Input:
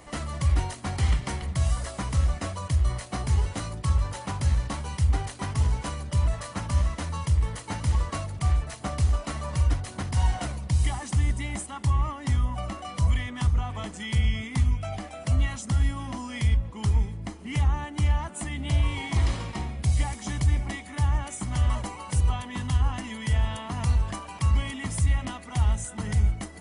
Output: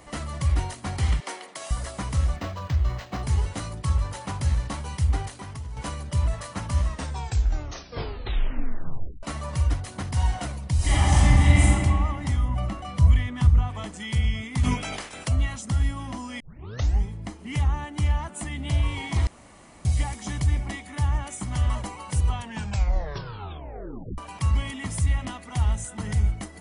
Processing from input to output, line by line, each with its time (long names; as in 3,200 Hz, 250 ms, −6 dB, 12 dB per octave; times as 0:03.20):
0:01.20–0:01.71: high-pass filter 340 Hz 24 dB per octave
0:02.36–0:03.23: linearly interpolated sample-rate reduction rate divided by 4×
0:05.28–0:05.77: downward compressor 3 to 1, threshold −36 dBFS
0:06.84: tape stop 2.39 s
0:10.76–0:11.63: thrown reverb, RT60 2.3 s, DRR −11 dB
0:12.48–0:13.68: bass and treble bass +6 dB, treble −4 dB
0:14.63–0:15.27: ceiling on every frequency bin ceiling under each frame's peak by 23 dB
0:16.40: tape start 0.64 s
0:19.27–0:19.85: fill with room tone
0:22.36: tape stop 1.82 s